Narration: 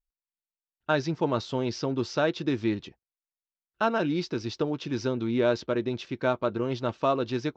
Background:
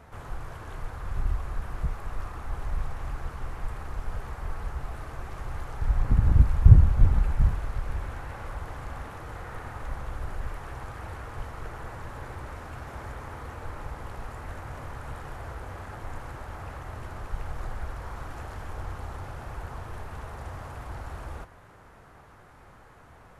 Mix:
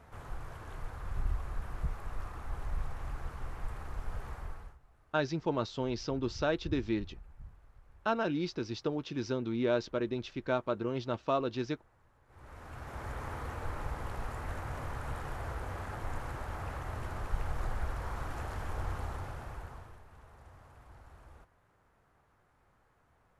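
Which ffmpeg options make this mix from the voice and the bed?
-filter_complex "[0:a]adelay=4250,volume=0.531[s0];[1:a]volume=12.6,afade=t=out:st=4.34:d=0.44:silence=0.0749894,afade=t=in:st=12.27:d=0.98:silence=0.0421697,afade=t=out:st=18.98:d=1.02:silence=0.149624[s1];[s0][s1]amix=inputs=2:normalize=0"

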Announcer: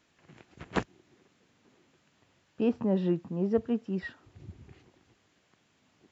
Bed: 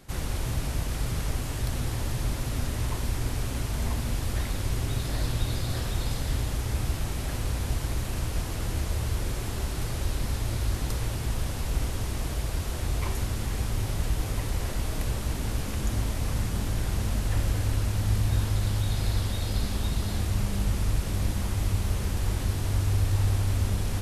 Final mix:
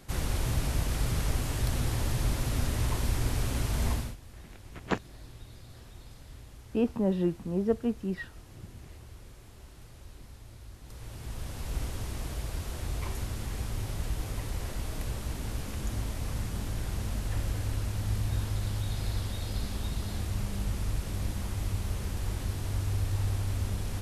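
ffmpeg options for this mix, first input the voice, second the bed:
-filter_complex "[0:a]adelay=4150,volume=1[s0];[1:a]volume=5.31,afade=t=out:st=3.91:d=0.25:silence=0.1,afade=t=in:st=10.82:d=0.96:silence=0.188365[s1];[s0][s1]amix=inputs=2:normalize=0"

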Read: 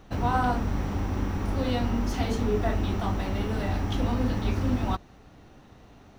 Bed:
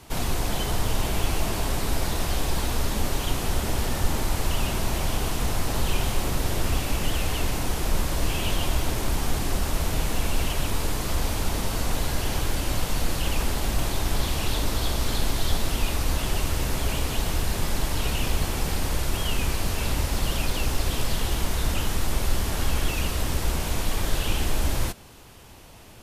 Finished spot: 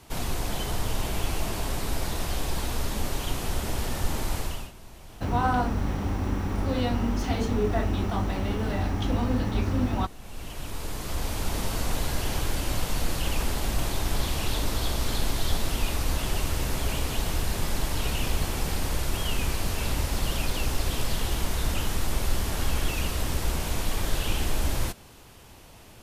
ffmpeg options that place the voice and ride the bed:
-filter_complex "[0:a]adelay=5100,volume=1.06[s0];[1:a]volume=5.96,afade=t=out:st=4.36:d=0.36:silence=0.133352,afade=t=in:st=10.18:d=1.44:silence=0.112202[s1];[s0][s1]amix=inputs=2:normalize=0"

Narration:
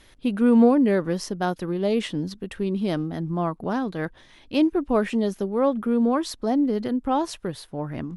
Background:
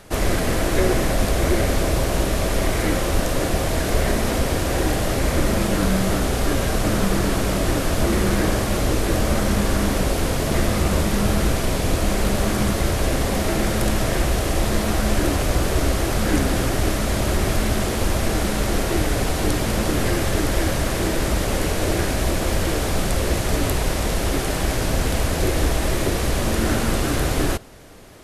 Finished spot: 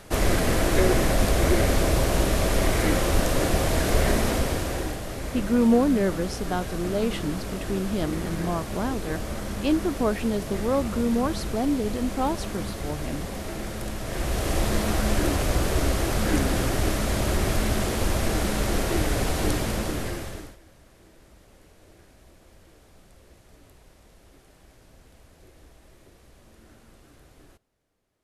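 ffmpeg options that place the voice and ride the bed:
-filter_complex "[0:a]adelay=5100,volume=0.708[s0];[1:a]volume=2.24,afade=t=out:st=4.16:d=0.84:silence=0.298538,afade=t=in:st=14.03:d=0.5:silence=0.375837,afade=t=out:st=19.49:d=1.08:silence=0.0354813[s1];[s0][s1]amix=inputs=2:normalize=0"

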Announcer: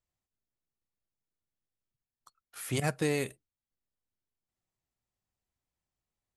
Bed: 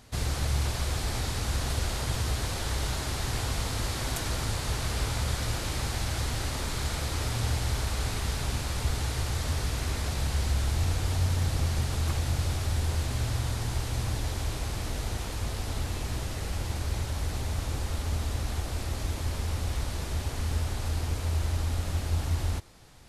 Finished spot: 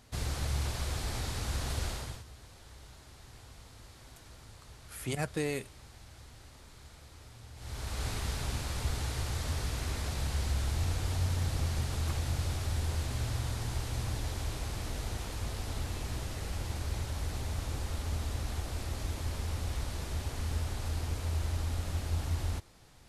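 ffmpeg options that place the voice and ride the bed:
-filter_complex "[0:a]adelay=2350,volume=0.668[s0];[1:a]volume=4.22,afade=t=out:st=1.87:d=0.37:silence=0.141254,afade=t=in:st=7.55:d=0.52:silence=0.133352[s1];[s0][s1]amix=inputs=2:normalize=0"

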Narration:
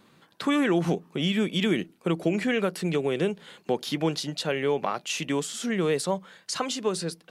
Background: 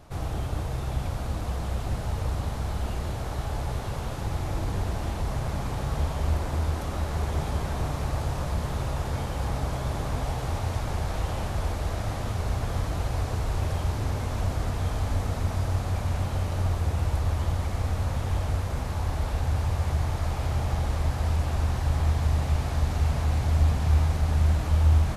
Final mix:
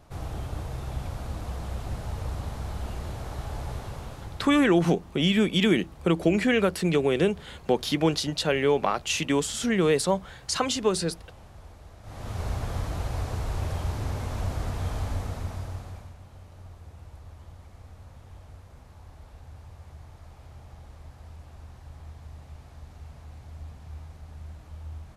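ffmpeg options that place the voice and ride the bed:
-filter_complex "[0:a]adelay=4000,volume=1.41[s0];[1:a]volume=4.22,afade=t=out:st=3.73:d=0.97:silence=0.177828,afade=t=in:st=12.02:d=0.4:silence=0.149624,afade=t=out:st=14.99:d=1.16:silence=0.133352[s1];[s0][s1]amix=inputs=2:normalize=0"

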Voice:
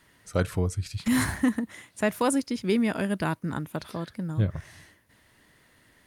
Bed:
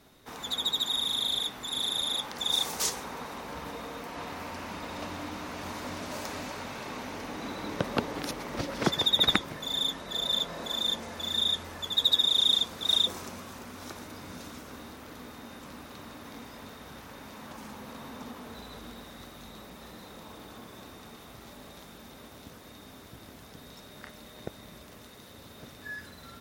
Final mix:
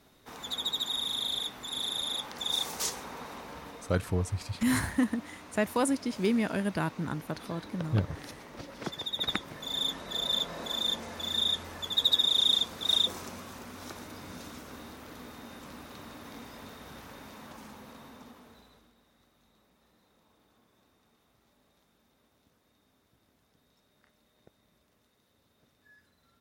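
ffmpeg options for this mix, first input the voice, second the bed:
-filter_complex "[0:a]adelay=3550,volume=0.708[s0];[1:a]volume=2.11,afade=t=out:st=3.34:d=0.66:silence=0.421697,afade=t=in:st=9.12:d=0.8:silence=0.334965,afade=t=out:st=17.06:d=1.85:silence=0.1[s1];[s0][s1]amix=inputs=2:normalize=0"

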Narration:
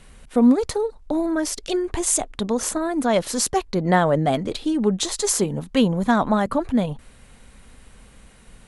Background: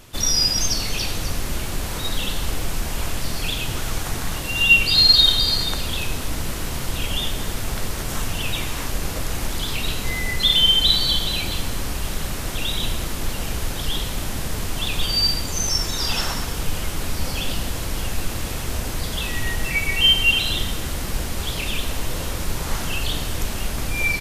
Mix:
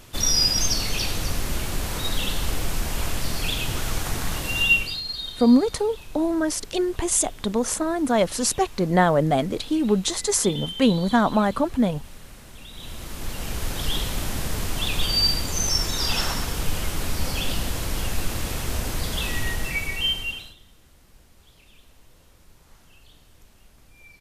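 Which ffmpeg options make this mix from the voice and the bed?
-filter_complex "[0:a]adelay=5050,volume=0.944[s0];[1:a]volume=6.68,afade=t=out:st=4.52:d=0.49:silence=0.133352,afade=t=in:st=12.72:d=1.14:silence=0.133352,afade=t=out:st=19.32:d=1.23:silence=0.0421697[s1];[s0][s1]amix=inputs=2:normalize=0"

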